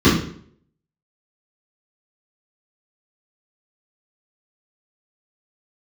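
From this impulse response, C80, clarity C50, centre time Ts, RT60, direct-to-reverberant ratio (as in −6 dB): 10.0 dB, 6.0 dB, 49 ms, 0.60 s, −11.5 dB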